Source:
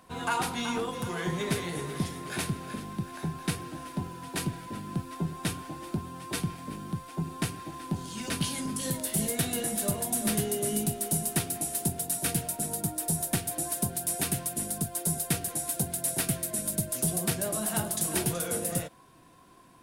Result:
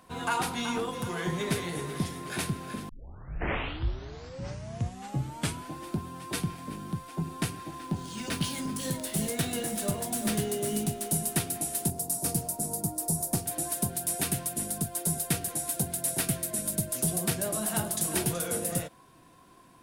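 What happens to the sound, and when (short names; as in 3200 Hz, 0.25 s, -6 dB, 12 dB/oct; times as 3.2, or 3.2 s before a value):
2.89 tape start 2.84 s
7.79–11.11 median filter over 3 samples
11.9–13.46 band shelf 2300 Hz -11 dB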